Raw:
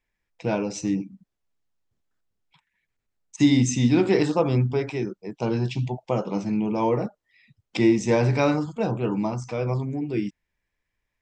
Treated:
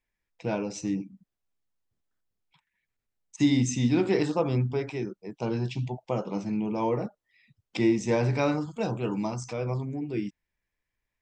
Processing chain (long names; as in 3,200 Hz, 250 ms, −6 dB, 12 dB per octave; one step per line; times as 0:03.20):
0:08.73–0:09.53: high-shelf EQ 3,600 Hz +10 dB
level −4.5 dB